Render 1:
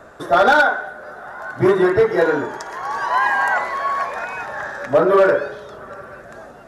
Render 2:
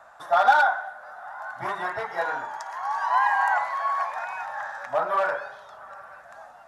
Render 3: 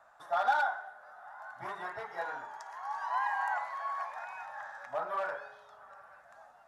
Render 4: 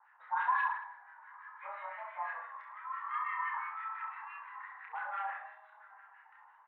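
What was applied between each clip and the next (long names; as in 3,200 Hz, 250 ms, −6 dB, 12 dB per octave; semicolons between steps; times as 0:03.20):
low shelf with overshoot 560 Hz −12 dB, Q 3; level −8.5 dB
tuned comb filter 420 Hz, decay 0.65 s, mix 60%; level −3 dB
two-band tremolo in antiphase 5.9 Hz, depth 100%, crossover 1,000 Hz; reverse bouncing-ball delay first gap 30 ms, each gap 1.2×, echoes 5; single-sideband voice off tune +210 Hz 310–2,700 Hz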